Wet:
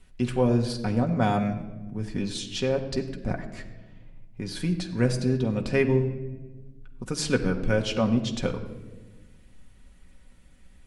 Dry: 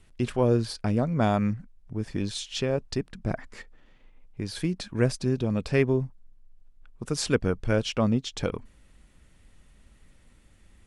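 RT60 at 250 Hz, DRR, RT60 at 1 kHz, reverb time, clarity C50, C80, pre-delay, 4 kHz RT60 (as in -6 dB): 2.0 s, 2.0 dB, 1.0 s, 1.2 s, 10.5 dB, 12.0 dB, 4 ms, 0.85 s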